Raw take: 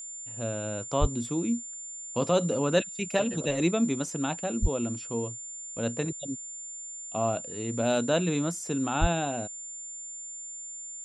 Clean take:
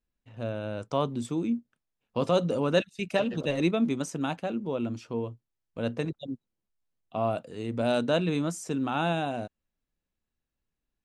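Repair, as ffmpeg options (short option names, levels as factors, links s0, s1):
-filter_complex "[0:a]bandreject=f=7200:w=30,asplit=3[s0][s1][s2];[s0]afade=t=out:st=1:d=0.02[s3];[s1]highpass=f=140:w=0.5412,highpass=f=140:w=1.3066,afade=t=in:st=1:d=0.02,afade=t=out:st=1.12:d=0.02[s4];[s2]afade=t=in:st=1.12:d=0.02[s5];[s3][s4][s5]amix=inputs=3:normalize=0,asplit=3[s6][s7][s8];[s6]afade=t=out:st=4.61:d=0.02[s9];[s7]highpass=f=140:w=0.5412,highpass=f=140:w=1.3066,afade=t=in:st=4.61:d=0.02,afade=t=out:st=4.73:d=0.02[s10];[s8]afade=t=in:st=4.73:d=0.02[s11];[s9][s10][s11]amix=inputs=3:normalize=0,asplit=3[s12][s13][s14];[s12]afade=t=out:st=9:d=0.02[s15];[s13]highpass=f=140:w=0.5412,highpass=f=140:w=1.3066,afade=t=in:st=9:d=0.02,afade=t=out:st=9.12:d=0.02[s16];[s14]afade=t=in:st=9.12:d=0.02[s17];[s15][s16][s17]amix=inputs=3:normalize=0"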